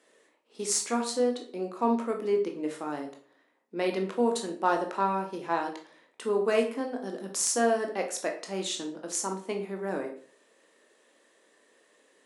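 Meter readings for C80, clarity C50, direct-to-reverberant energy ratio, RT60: 13.0 dB, 8.5 dB, 2.5 dB, 0.50 s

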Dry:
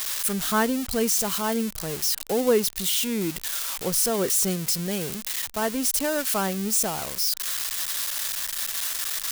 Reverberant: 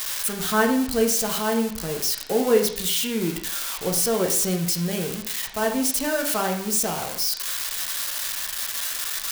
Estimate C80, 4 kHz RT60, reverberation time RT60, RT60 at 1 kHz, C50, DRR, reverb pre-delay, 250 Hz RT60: 10.5 dB, 0.55 s, 0.60 s, 0.60 s, 7.0 dB, 1.5 dB, 8 ms, 0.60 s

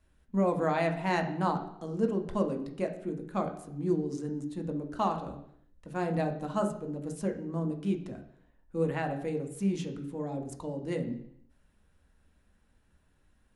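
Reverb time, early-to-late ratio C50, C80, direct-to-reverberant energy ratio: 0.70 s, 10.0 dB, 13.5 dB, 3.5 dB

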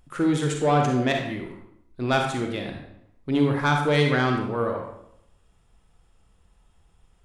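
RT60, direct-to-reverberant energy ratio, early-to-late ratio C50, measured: 0.75 s, 2.0 dB, 4.0 dB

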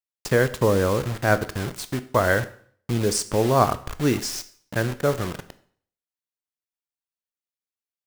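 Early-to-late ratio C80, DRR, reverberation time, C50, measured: 19.5 dB, 12.0 dB, 0.55 s, 16.0 dB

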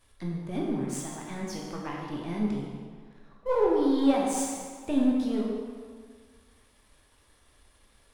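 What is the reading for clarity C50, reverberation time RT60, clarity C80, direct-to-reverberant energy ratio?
0.0 dB, 1.8 s, 2.0 dB, -3.0 dB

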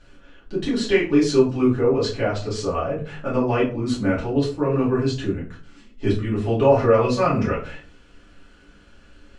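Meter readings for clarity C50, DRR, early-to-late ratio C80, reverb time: 7.5 dB, -8.0 dB, 13.0 dB, 0.40 s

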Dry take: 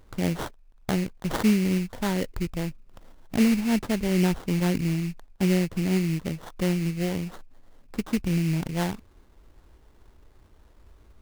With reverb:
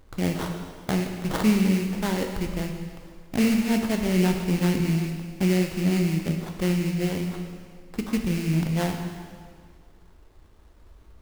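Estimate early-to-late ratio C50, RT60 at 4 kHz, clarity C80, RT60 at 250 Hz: 5.0 dB, 1.8 s, 6.0 dB, 1.9 s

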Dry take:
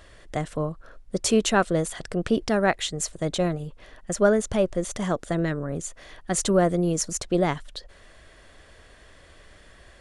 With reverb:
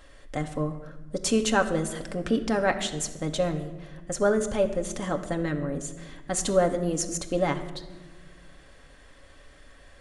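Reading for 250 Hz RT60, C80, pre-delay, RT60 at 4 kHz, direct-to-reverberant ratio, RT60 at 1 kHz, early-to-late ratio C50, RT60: 2.2 s, 13.0 dB, 4 ms, 0.75 s, 3.5 dB, 1.1 s, 11.5 dB, 1.3 s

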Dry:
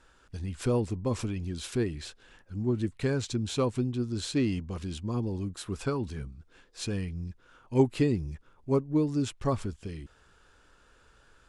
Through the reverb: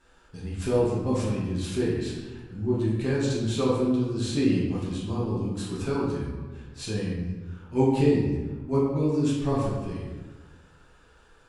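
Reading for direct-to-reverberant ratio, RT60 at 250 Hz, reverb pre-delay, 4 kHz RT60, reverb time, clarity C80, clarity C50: -7.5 dB, 1.6 s, 3 ms, 0.80 s, 1.4 s, 3.0 dB, 0.5 dB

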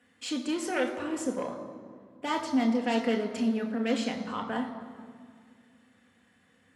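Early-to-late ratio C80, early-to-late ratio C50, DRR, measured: 9.5 dB, 8.5 dB, 2.5 dB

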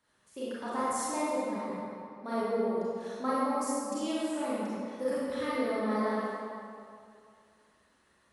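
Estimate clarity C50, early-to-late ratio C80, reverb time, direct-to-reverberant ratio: -5.0 dB, -2.5 dB, 2.4 s, -10.0 dB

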